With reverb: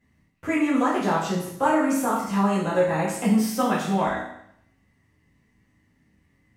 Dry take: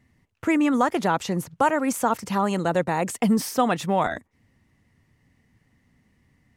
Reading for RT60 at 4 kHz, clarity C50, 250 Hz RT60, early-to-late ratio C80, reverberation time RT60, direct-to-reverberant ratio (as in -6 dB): 0.70 s, 3.0 dB, 0.75 s, 6.5 dB, 0.70 s, -9.0 dB